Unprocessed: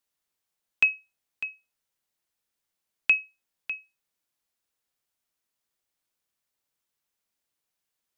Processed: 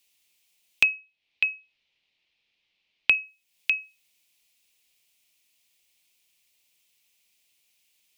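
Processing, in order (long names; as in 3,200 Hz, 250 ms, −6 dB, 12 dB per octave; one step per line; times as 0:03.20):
0:00.83–0:03.15: low-pass filter 4,000 Hz 24 dB per octave
high shelf with overshoot 1,900 Hz +8.5 dB, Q 3
downward compressor 3 to 1, threshold −31 dBFS, peak gain reduction 21 dB
level +5.5 dB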